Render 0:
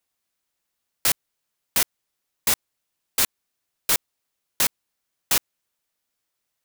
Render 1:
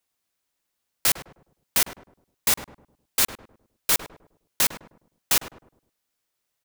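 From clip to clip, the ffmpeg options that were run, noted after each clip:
ffmpeg -i in.wav -filter_complex "[0:a]asplit=2[link_01][link_02];[link_02]adelay=103,lowpass=frequency=900:poles=1,volume=-7dB,asplit=2[link_03][link_04];[link_04]adelay=103,lowpass=frequency=900:poles=1,volume=0.43,asplit=2[link_05][link_06];[link_06]adelay=103,lowpass=frequency=900:poles=1,volume=0.43,asplit=2[link_07][link_08];[link_08]adelay=103,lowpass=frequency=900:poles=1,volume=0.43,asplit=2[link_09][link_10];[link_10]adelay=103,lowpass=frequency=900:poles=1,volume=0.43[link_11];[link_01][link_03][link_05][link_07][link_09][link_11]amix=inputs=6:normalize=0" out.wav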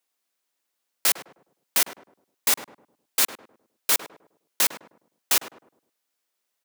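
ffmpeg -i in.wav -af "highpass=260" out.wav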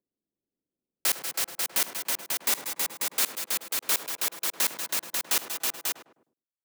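ffmpeg -i in.wav -filter_complex "[0:a]agate=range=-33dB:threshold=-58dB:ratio=3:detection=peak,aecho=1:1:74|187|193|323|432|541:0.119|0.266|0.251|0.668|0.106|0.596,acrossover=split=380|1100[link_01][link_02][link_03];[link_01]acompressor=mode=upward:threshold=-54dB:ratio=2.5[link_04];[link_04][link_02][link_03]amix=inputs=3:normalize=0,volume=-4.5dB" out.wav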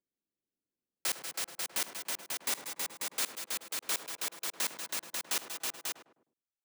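ffmpeg -i in.wav -af "equalizer=frequency=15000:width_type=o:width=0.28:gain=-12.5,volume=-6dB" out.wav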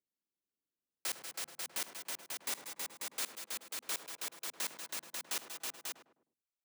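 ffmpeg -i in.wav -af "bandreject=frequency=50:width_type=h:width=6,bandreject=frequency=100:width_type=h:width=6,bandreject=frequency=150:width_type=h:width=6,bandreject=frequency=200:width_type=h:width=6,bandreject=frequency=250:width_type=h:width=6,volume=-5dB" out.wav

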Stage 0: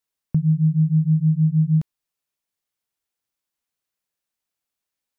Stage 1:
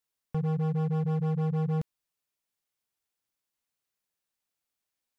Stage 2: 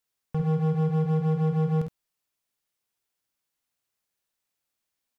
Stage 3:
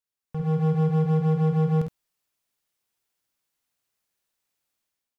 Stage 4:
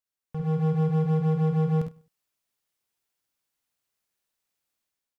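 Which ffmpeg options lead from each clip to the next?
ffmpeg -i in.wav -af "volume=24.5dB,asoftclip=hard,volume=-24.5dB,volume=-2dB" out.wav
ffmpeg -i in.wav -af "aecho=1:1:51|68:0.422|0.376,volume=2dB" out.wav
ffmpeg -i in.wav -af "dynaudnorm=framelen=120:gausssize=7:maxgain=11dB,volume=-8.5dB" out.wav
ffmpeg -i in.wav -af "aecho=1:1:99|198:0.075|0.0217,volume=-2dB" out.wav

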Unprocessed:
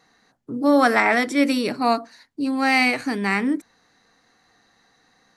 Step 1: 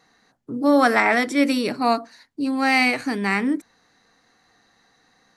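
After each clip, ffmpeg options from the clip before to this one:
ffmpeg -i in.wav -af anull out.wav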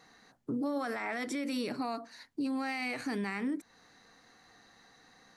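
ffmpeg -i in.wav -af "acompressor=threshold=-32dB:ratio=2.5,alimiter=level_in=3dB:limit=-24dB:level=0:latency=1:release=41,volume=-3dB" out.wav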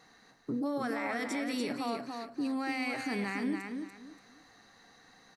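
ffmpeg -i in.wav -af "aecho=1:1:288|576|864:0.531|0.138|0.0359" out.wav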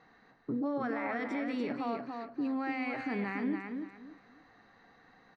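ffmpeg -i in.wav -af "lowpass=2300" out.wav

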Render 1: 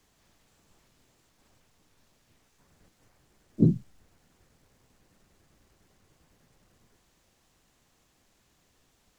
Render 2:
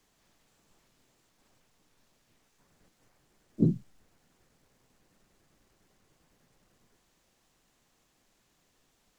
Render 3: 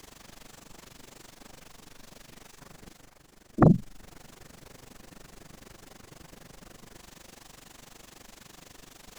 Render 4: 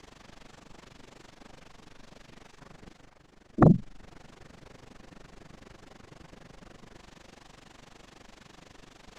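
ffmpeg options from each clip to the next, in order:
ffmpeg -i in.wav -af "equalizer=frequency=73:width=1.2:gain=-7,volume=-2.5dB" out.wav
ffmpeg -i in.wav -af "areverse,acompressor=mode=upward:threshold=-53dB:ratio=2.5,areverse,tremolo=f=24:d=0.889,aeval=exprs='0.299*sin(PI/2*3.98*val(0)/0.299)':channel_layout=same" out.wav
ffmpeg -i in.wav -af "adynamicsmooth=sensitivity=6.5:basefreq=5000" out.wav

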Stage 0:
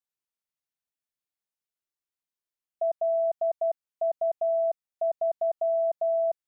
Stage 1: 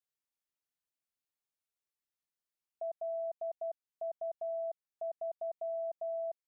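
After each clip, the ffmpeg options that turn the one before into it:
ffmpeg -i in.wav -af "alimiter=level_in=6.5dB:limit=-24dB:level=0:latency=1:release=400,volume=-6.5dB,volume=-3dB" out.wav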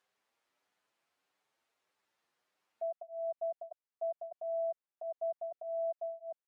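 ffmpeg -i in.wav -filter_complex "[0:a]acompressor=mode=upward:threshold=-58dB:ratio=2.5,bandpass=frequency=860:width_type=q:width=0.54:csg=0,asplit=2[link_01][link_02];[link_02]adelay=7.8,afreqshift=1.6[link_03];[link_01][link_03]amix=inputs=2:normalize=1,volume=3.5dB" out.wav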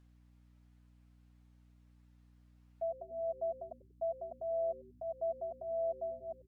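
ffmpeg -i in.wav -filter_complex "[0:a]aeval=exprs='val(0)+0.000794*(sin(2*PI*60*n/s)+sin(2*PI*2*60*n/s)/2+sin(2*PI*3*60*n/s)/3+sin(2*PI*4*60*n/s)/4+sin(2*PI*5*60*n/s)/5)':channel_layout=same,asplit=5[link_01][link_02][link_03][link_04][link_05];[link_02]adelay=94,afreqshift=-140,volume=-19dB[link_06];[link_03]adelay=188,afreqshift=-280,volume=-25.4dB[link_07];[link_04]adelay=282,afreqshift=-420,volume=-31.8dB[link_08];[link_05]adelay=376,afreqshift=-560,volume=-38.1dB[link_09];[link_01][link_06][link_07][link_08][link_09]amix=inputs=5:normalize=0" out.wav

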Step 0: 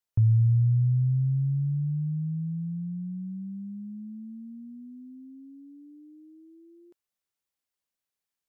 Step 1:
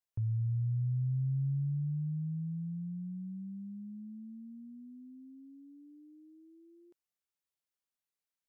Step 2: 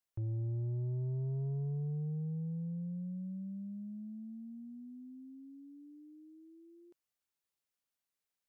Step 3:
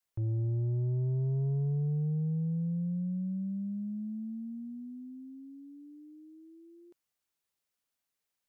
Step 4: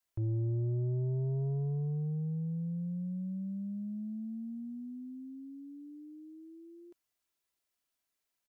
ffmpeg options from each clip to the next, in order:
ffmpeg -i in.wav -af "alimiter=limit=-22.5dB:level=0:latency=1,volume=-6dB" out.wav
ffmpeg -i in.wav -af "asoftclip=type=tanh:threshold=-34.5dB,volume=1dB" out.wav
ffmpeg -i in.wav -af "adynamicequalizer=threshold=0.00398:dfrequency=220:dqfactor=0.83:tfrequency=220:tqfactor=0.83:attack=5:release=100:ratio=0.375:range=2:mode=boostabove:tftype=bell,volume=3.5dB" out.wav
ffmpeg -i in.wav -af "aecho=1:1:3:0.35" out.wav

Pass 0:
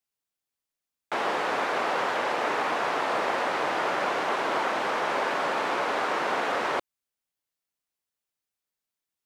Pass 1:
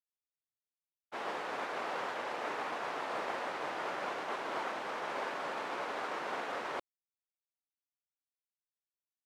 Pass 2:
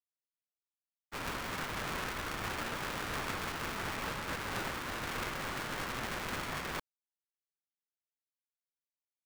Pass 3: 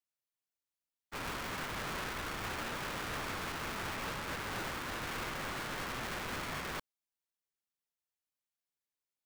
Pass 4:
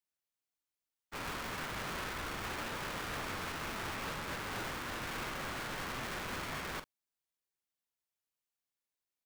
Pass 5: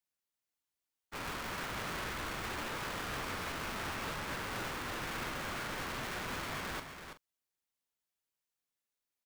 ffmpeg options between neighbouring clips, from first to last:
ffmpeg -i in.wav -af "agate=range=-33dB:threshold=-23dB:ratio=3:detection=peak,volume=-8dB" out.wav
ffmpeg -i in.wav -af "aeval=exprs='val(0)*sgn(sin(2*PI*550*n/s))':channel_layout=same" out.wav
ffmpeg -i in.wav -af "asoftclip=type=hard:threshold=-35dB" out.wav
ffmpeg -i in.wav -filter_complex "[0:a]asplit=2[link_01][link_02];[link_02]adelay=44,volume=-11dB[link_03];[link_01][link_03]amix=inputs=2:normalize=0,volume=-1dB" out.wav
ffmpeg -i in.wav -af "aecho=1:1:333:0.398" out.wav

